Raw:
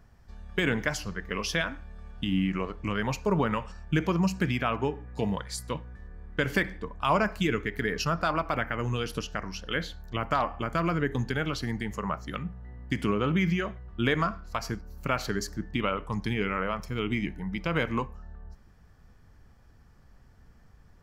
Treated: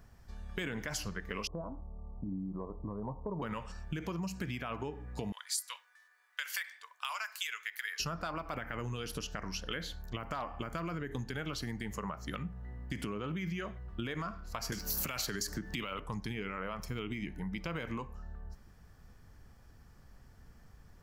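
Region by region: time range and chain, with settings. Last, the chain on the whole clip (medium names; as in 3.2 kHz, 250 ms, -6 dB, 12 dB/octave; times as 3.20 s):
1.47–3.42 s: steep low-pass 1.1 kHz 72 dB/octave + compression 1.5:1, threshold -41 dBFS
5.32–8.00 s: Bessel high-pass 1.7 kHz, order 4 + treble shelf 5.1 kHz +5 dB
14.72–16.00 s: treble shelf 2.2 kHz +11 dB + three bands compressed up and down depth 100%
whole clip: peak limiter -20 dBFS; compression, threshold -34 dBFS; treble shelf 5.9 kHz +7 dB; trim -1 dB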